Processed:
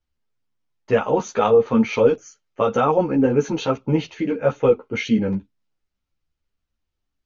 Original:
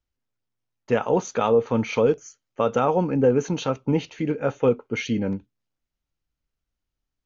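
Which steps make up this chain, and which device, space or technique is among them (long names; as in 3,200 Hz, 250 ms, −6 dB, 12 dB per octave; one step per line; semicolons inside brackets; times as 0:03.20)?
string-machine ensemble chorus (string-ensemble chorus; low-pass filter 6,100 Hz 12 dB per octave)
level +6 dB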